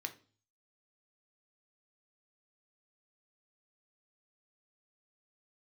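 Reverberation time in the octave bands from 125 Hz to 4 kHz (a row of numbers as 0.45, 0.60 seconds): 0.75, 0.50, 0.40, 0.35, 0.35, 0.45 seconds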